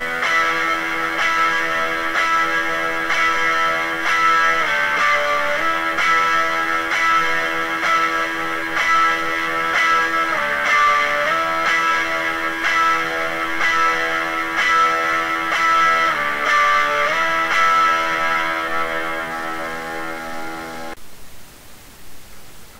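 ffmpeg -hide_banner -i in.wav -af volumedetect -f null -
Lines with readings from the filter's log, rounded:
mean_volume: -18.8 dB
max_volume: -4.9 dB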